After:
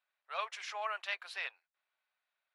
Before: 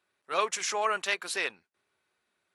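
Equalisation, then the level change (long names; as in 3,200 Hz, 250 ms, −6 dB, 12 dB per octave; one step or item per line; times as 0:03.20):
four-pole ladder high-pass 540 Hz, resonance 45%
high-frequency loss of the air 370 metres
first difference
+15.0 dB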